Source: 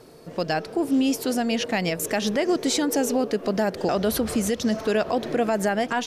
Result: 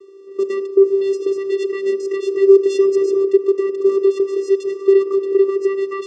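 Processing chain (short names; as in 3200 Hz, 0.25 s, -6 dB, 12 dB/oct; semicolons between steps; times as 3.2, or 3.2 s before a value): dynamic EQ 310 Hz, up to +5 dB, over -35 dBFS, Q 0.71; vocoder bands 8, square 391 Hz; Schroeder reverb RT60 0.67 s, combs from 27 ms, DRR 15.5 dB; gain +4.5 dB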